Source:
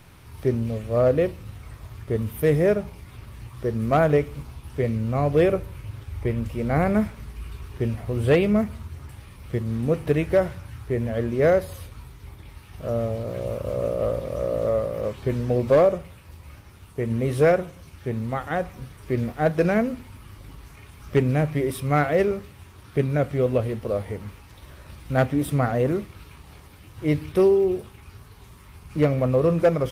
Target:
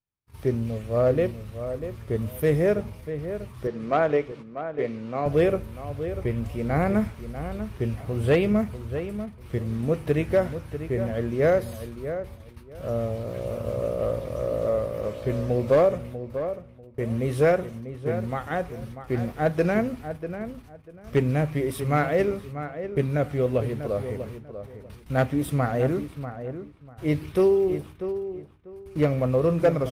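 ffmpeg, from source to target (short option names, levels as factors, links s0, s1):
-filter_complex "[0:a]asettb=1/sr,asplit=3[s0][s1][s2];[s0]atrim=end=3.674[s3];[s1]atrim=start=3.67:end=5.26,asetpts=PTS-STARTPTS,afade=t=in:d=0.004:c=qsin,afade=t=out:st=1.586:d=0.004:c=qsin,highpass=260,lowpass=5000[s4];[s2]atrim=start=5.256[s5];[s3][s4]acrossfade=d=0.004:c1=hsin:c2=qsin[s6];[s6][s5]acrossfade=d=0.004:c1=qsin:c2=hsin,agate=range=0.00708:threshold=0.00891:ratio=16:detection=peak,asplit=2[s7][s8];[s8]adelay=643,lowpass=f=2000:p=1,volume=0.316,asplit=2[s9][s10];[s10]adelay=643,lowpass=f=2000:p=1,volume=0.22,asplit=2[s11][s12];[s12]adelay=643,lowpass=f=2000:p=1,volume=0.22[s13];[s9][s11][s13]amix=inputs=3:normalize=0[s14];[s7][s14]amix=inputs=2:normalize=0,volume=0.794"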